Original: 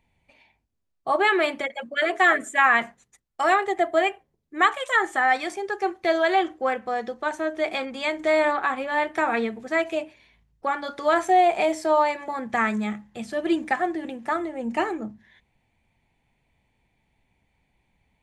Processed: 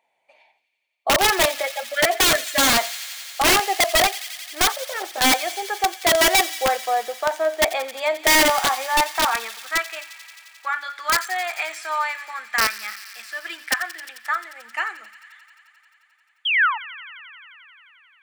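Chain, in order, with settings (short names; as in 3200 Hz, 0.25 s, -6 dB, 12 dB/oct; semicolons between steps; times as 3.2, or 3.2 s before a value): 4.72–5.21 median filter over 41 samples; 16.45–16.78 painted sound fall 820–3400 Hz -23 dBFS; high-pass sweep 640 Hz -> 1500 Hz, 8.42–10.06; wrapped overs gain 11 dB; on a send: thin delay 88 ms, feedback 85%, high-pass 2300 Hz, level -14 dB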